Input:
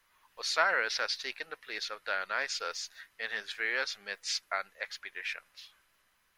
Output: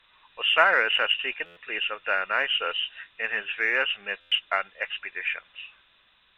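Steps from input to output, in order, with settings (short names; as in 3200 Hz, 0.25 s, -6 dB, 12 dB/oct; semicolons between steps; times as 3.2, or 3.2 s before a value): nonlinear frequency compression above 2400 Hz 4:1; added harmonics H 7 -41 dB, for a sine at -13.5 dBFS; stuck buffer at 1.45/4.2, samples 512, times 9; gain +8 dB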